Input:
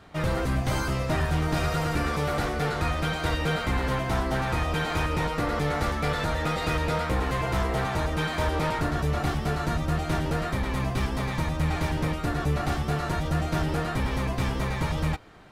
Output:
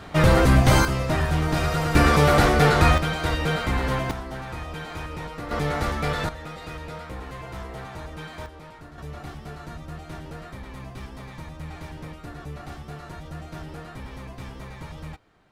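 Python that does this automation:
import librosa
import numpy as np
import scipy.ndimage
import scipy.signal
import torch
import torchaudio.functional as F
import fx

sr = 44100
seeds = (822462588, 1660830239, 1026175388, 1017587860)

y = fx.gain(x, sr, db=fx.steps((0.0, 10.0), (0.85, 2.5), (1.95, 10.0), (2.98, 2.0), (4.11, -7.5), (5.51, 1.0), (6.29, -10.0), (8.46, -17.5), (8.98, -11.0)))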